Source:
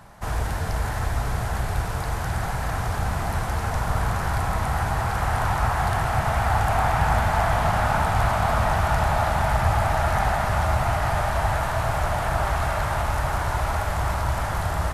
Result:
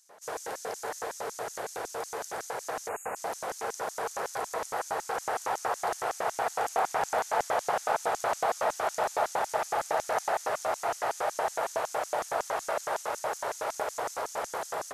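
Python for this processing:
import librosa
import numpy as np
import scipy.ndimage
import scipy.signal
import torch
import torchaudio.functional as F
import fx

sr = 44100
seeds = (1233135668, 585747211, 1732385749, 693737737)

y = fx.filter_lfo_highpass(x, sr, shape='square', hz=5.4, low_hz=460.0, high_hz=6300.0, q=4.1)
y = fx.spec_erase(y, sr, start_s=2.89, length_s=0.27, low_hz=2900.0, high_hz=6500.0)
y = y * librosa.db_to_amplitude(-6.5)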